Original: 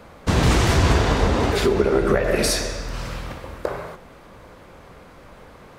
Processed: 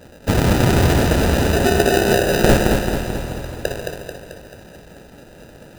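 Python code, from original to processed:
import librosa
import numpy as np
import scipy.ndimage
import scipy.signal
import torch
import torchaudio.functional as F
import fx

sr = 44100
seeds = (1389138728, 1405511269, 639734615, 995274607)

y = scipy.signal.sosfilt(scipy.signal.butter(2, 57.0, 'highpass', fs=sr, output='sos'), x)
y = fx.high_shelf_res(y, sr, hz=4700.0, db=7.0, q=3.0)
y = fx.sample_hold(y, sr, seeds[0], rate_hz=1100.0, jitter_pct=0)
y = fx.echo_feedback(y, sr, ms=219, feedback_pct=55, wet_db=-5.0)
y = y * 10.0 ** (1.5 / 20.0)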